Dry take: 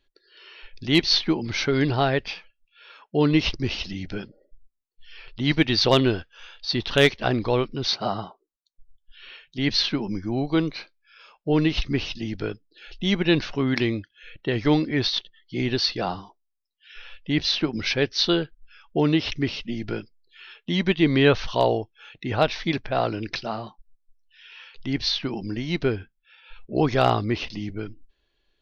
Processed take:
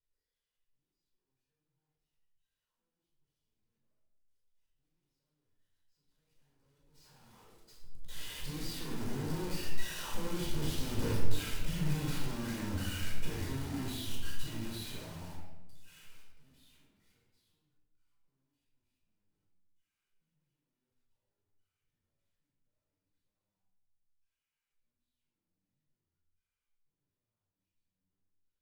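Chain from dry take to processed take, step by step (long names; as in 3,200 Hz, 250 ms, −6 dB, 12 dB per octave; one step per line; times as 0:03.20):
sign of each sample alone
source passing by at 0:11.15, 39 m/s, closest 6 metres
noise gate −54 dBFS, range −39 dB
high-shelf EQ 6,100 Hz +8.5 dB
downward compressor 6 to 1, threshold −46 dBFS, peak gain reduction 20.5 dB
soft clipping −38.5 dBFS, distortion −24 dB
convolution reverb RT60 1.0 s, pre-delay 14 ms, DRR −4.5 dB
bad sample-rate conversion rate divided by 2×, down none, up hold
low-shelf EQ 360 Hz +8 dB
level −1 dB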